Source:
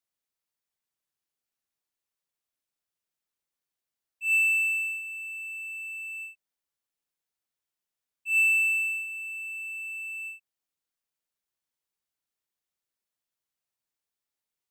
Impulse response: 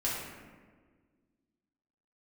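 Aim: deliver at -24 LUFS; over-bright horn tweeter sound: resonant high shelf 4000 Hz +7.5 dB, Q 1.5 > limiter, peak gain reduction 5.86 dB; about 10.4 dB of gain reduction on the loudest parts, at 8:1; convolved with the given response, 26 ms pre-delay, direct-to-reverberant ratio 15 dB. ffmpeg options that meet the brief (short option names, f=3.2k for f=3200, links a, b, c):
-filter_complex "[0:a]acompressor=threshold=-31dB:ratio=8,asplit=2[a][b];[1:a]atrim=start_sample=2205,adelay=26[c];[b][c]afir=irnorm=-1:irlink=0,volume=-21.5dB[d];[a][d]amix=inputs=2:normalize=0,highshelf=f=4k:t=q:w=1.5:g=7.5,volume=12.5dB,alimiter=limit=-20dB:level=0:latency=1"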